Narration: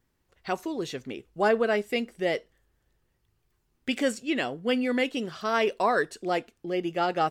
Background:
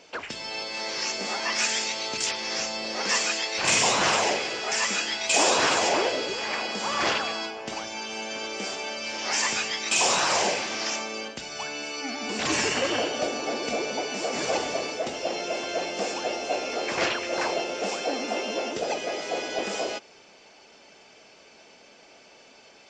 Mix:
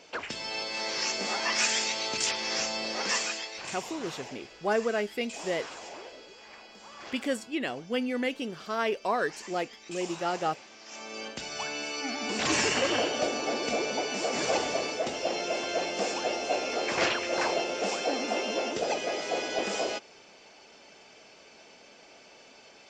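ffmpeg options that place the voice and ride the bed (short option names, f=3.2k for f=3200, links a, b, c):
-filter_complex "[0:a]adelay=3250,volume=-4dB[a];[1:a]volume=18dB,afade=t=out:st=2.83:d=0.92:silence=0.112202,afade=t=in:st=10.87:d=0.54:silence=0.112202[b];[a][b]amix=inputs=2:normalize=0"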